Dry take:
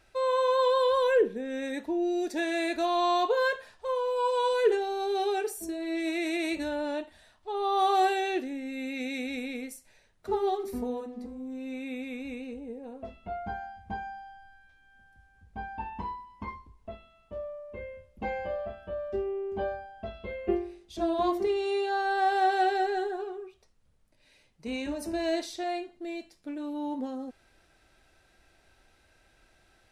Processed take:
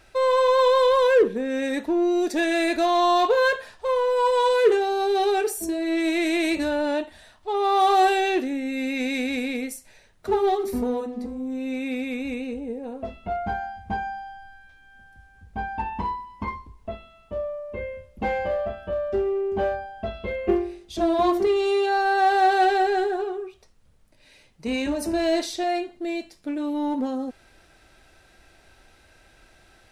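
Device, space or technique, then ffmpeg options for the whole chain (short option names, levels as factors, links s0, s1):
parallel distortion: -filter_complex "[0:a]asplit=2[s0][s1];[s1]asoftclip=type=hard:threshold=0.0282,volume=0.562[s2];[s0][s2]amix=inputs=2:normalize=0,volume=1.68"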